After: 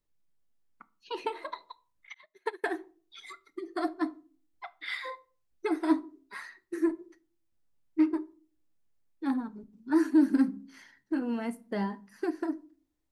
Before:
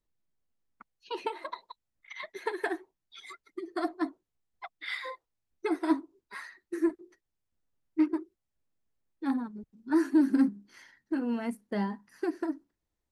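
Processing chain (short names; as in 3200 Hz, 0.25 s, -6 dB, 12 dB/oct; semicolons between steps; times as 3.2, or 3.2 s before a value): reverb RT60 0.40 s, pre-delay 7 ms, DRR 14 dB; 2.14–2.64 upward expander 2.5:1, over -46 dBFS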